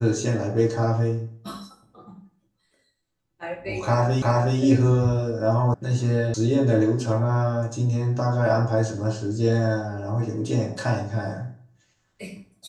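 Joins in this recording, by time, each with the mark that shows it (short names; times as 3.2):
4.22 repeat of the last 0.37 s
5.74 sound cut off
6.34 sound cut off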